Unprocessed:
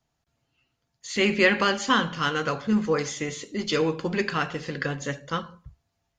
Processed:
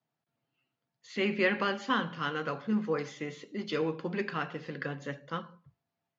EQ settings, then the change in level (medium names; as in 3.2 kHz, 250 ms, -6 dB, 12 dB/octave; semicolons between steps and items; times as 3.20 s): high-pass 130 Hz 24 dB/octave; distance through air 130 m; treble shelf 7.1 kHz -7.5 dB; -6.5 dB